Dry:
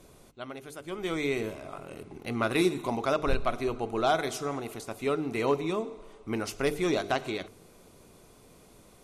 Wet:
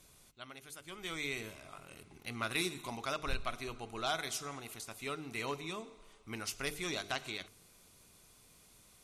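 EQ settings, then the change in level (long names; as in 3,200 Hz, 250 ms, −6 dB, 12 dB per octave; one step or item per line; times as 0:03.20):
guitar amp tone stack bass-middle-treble 5-5-5
+5.5 dB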